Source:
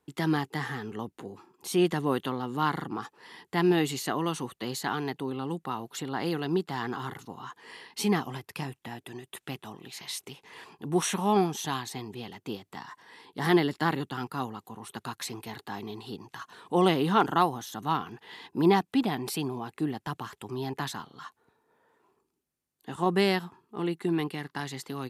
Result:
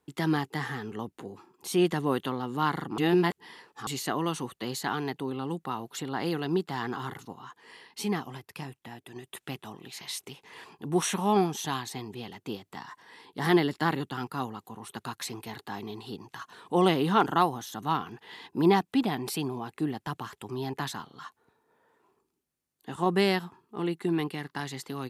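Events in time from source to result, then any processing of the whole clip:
2.98–3.87 s: reverse
7.33–9.16 s: gain -4 dB

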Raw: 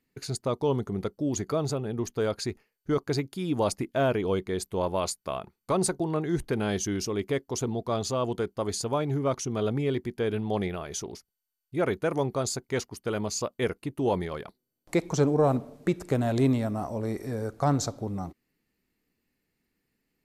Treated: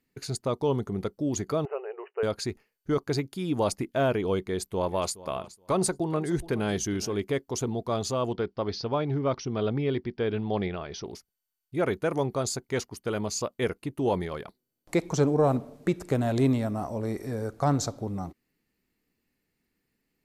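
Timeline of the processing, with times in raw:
1.65–2.23 s: brick-wall FIR band-pass 370–3000 Hz
4.41–7.21 s: feedback delay 421 ms, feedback 15%, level -18 dB
8.32–11.04 s: steep low-pass 5.7 kHz 96 dB/octave

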